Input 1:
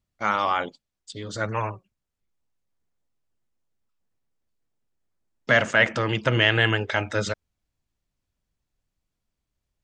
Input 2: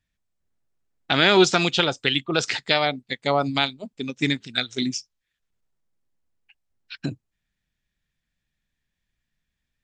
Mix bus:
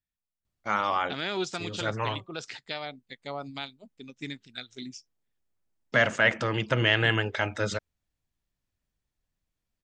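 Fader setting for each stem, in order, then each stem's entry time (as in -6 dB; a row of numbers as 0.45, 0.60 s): -3.5, -15.0 dB; 0.45, 0.00 s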